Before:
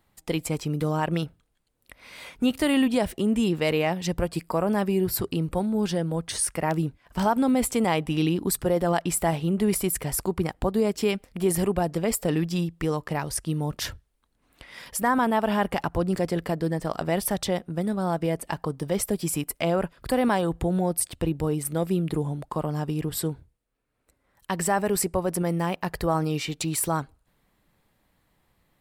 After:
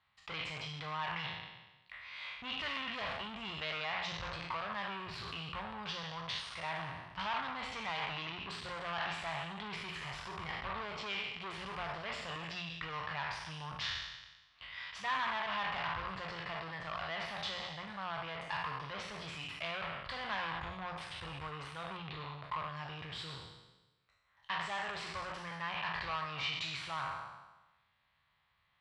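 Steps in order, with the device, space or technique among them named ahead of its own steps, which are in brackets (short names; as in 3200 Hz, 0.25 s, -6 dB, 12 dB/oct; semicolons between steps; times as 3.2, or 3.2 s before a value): spectral trails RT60 1.12 s; 21.97–22.44 LPF 5600 Hz; notches 60/120/180/240/300 Hz; scooped metal amplifier (tube stage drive 26 dB, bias 0.5; speaker cabinet 89–3700 Hz, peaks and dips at 280 Hz +5 dB, 500 Hz -4 dB, 1100 Hz +6 dB; passive tone stack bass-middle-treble 10-0-10); gain +2 dB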